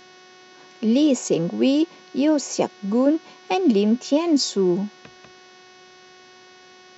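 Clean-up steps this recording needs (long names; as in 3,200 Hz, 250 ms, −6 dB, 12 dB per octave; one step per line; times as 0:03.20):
hum removal 368 Hz, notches 17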